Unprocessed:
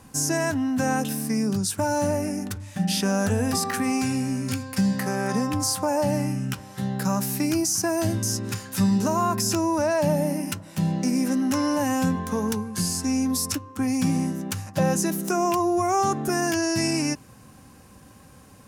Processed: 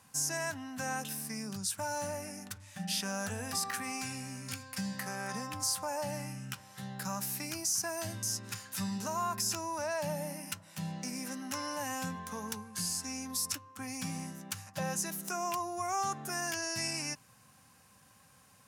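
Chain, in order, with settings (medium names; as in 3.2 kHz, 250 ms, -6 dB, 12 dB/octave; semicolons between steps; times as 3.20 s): high-pass 140 Hz 12 dB/octave; peaking EQ 320 Hz -14.5 dB 1.7 oct; trim -6.5 dB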